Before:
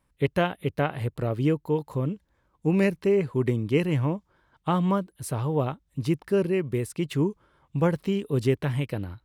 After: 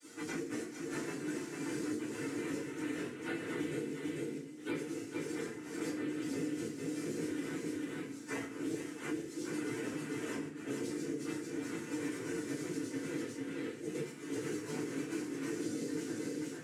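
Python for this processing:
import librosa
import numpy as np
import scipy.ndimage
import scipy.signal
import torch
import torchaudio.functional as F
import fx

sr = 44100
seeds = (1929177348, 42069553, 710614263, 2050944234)

p1 = fx.frame_reverse(x, sr, frame_ms=168.0)
p2 = fx.lowpass(p1, sr, hz=1600.0, slope=6)
p3 = fx.hum_notches(p2, sr, base_hz=50, count=6)
p4 = fx.noise_vocoder(p3, sr, seeds[0], bands=3)
p5 = np.diff(p4, prepend=0.0)
p6 = fx.over_compress(p5, sr, threshold_db=-53.0, ratio=-0.5)
p7 = fx.stretch_vocoder_free(p6, sr, factor=1.8)
p8 = fx.low_shelf_res(p7, sr, hz=570.0, db=10.5, q=1.5)
p9 = p8 + fx.echo_single(p8, sr, ms=446, db=-5.5, dry=0)
p10 = fx.rev_fdn(p9, sr, rt60_s=0.36, lf_ratio=1.5, hf_ratio=0.95, size_ms=20.0, drr_db=-9.5)
p11 = fx.band_squash(p10, sr, depth_pct=100)
y = F.gain(torch.from_numpy(p11), -3.5).numpy()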